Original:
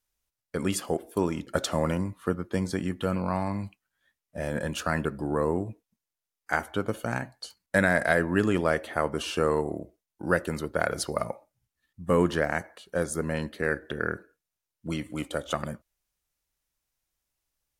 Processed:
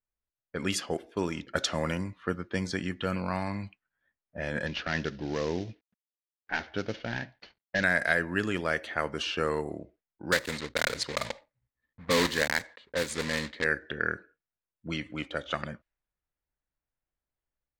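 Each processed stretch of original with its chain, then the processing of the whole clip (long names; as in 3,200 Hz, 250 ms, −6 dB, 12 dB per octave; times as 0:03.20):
0:04.66–0:07.84: variable-slope delta modulation 32 kbit/s + parametric band 1,200 Hz −5.5 dB 0.85 octaves
0:10.32–0:13.66: one scale factor per block 3 bits + EQ curve with evenly spaced ripples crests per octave 1, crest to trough 6 dB
whole clip: low-pass that shuts in the quiet parts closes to 980 Hz, open at −22.5 dBFS; flat-topped bell 3,100 Hz +8 dB 2.4 octaves; automatic gain control gain up to 4.5 dB; level −8 dB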